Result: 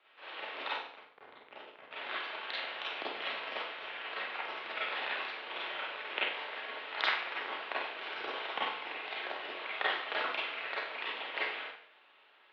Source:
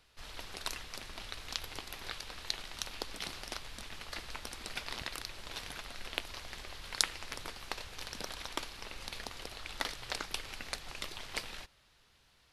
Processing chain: 0.71–1.91 Schmitt trigger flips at -35 dBFS; Schroeder reverb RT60 0.59 s, combs from 31 ms, DRR -7.5 dB; mistuned SSB -120 Hz 540–3300 Hz

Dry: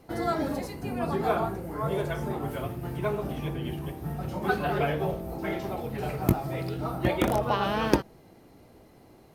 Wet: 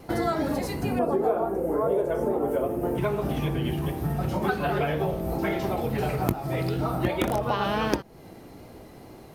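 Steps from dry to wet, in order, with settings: 0.99–2.98 graphic EQ 125/250/500/2000/4000 Hz -10/+4/+12/-4/-11 dB; compressor 4:1, threshold -32 dBFS, peak gain reduction 16.5 dB; wow and flutter 20 cents; gain +8.5 dB

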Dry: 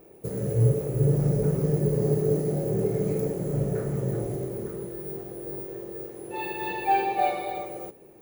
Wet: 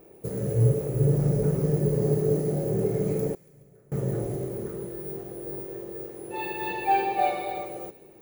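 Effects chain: 3.34–3.92 flipped gate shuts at -25 dBFS, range -28 dB; thin delay 0.14 s, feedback 58%, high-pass 1600 Hz, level -18 dB

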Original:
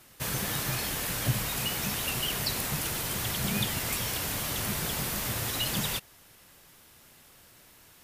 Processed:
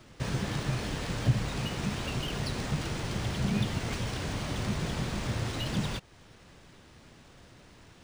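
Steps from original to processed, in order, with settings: in parallel at +2 dB: compressor, threshold -40 dBFS, peak gain reduction 17 dB; on the sum: tilt shelf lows +5.5 dB, about 650 Hz; decimation joined by straight lines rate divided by 3×; gain -3.5 dB

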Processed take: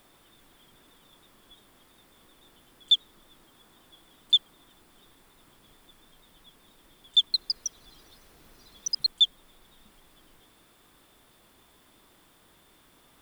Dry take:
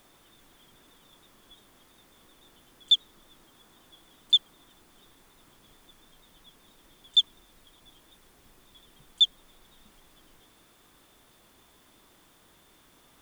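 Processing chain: bell 6300 Hz -5 dB 0.29 oct; 7.18–9.23 echoes that change speed 0.159 s, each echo +3 st, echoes 3

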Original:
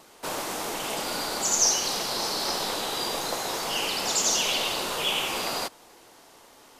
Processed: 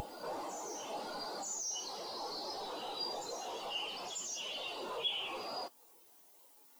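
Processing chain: added noise blue -45 dBFS; in parallel at -1.5 dB: compressor, threshold -38 dBFS, peak gain reduction 19 dB; on the sum: wavefolder -18.5 dBFS; on a send: reverse echo 0.939 s -7.5 dB; on the sum: companded quantiser 2-bit; spectral expander 2.5:1; gain -1.5 dB

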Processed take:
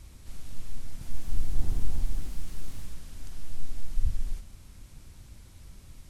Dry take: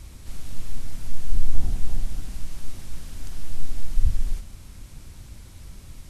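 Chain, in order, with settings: 0.88–3.04 echoes that change speed 0.133 s, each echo +2 st, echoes 3; gain -6.5 dB

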